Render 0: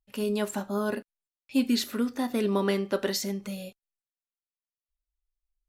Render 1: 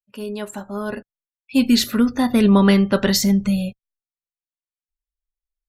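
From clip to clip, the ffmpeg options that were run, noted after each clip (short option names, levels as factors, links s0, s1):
-af "afftdn=nr=26:nf=-50,asubboost=boost=12:cutoff=120,dynaudnorm=f=240:g=11:m=4.47"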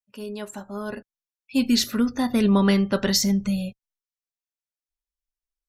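-af "equalizer=f=5700:t=o:w=0.53:g=6,volume=0.562"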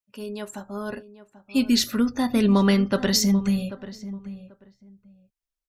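-filter_complex "[0:a]asplit=2[s0][s1];[s1]adelay=788,lowpass=f=1600:p=1,volume=0.2,asplit=2[s2][s3];[s3]adelay=788,lowpass=f=1600:p=1,volume=0.19[s4];[s0][s2][s4]amix=inputs=3:normalize=0"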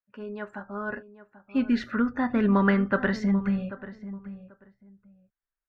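-af "lowpass=f=1600:t=q:w=3,volume=0.668"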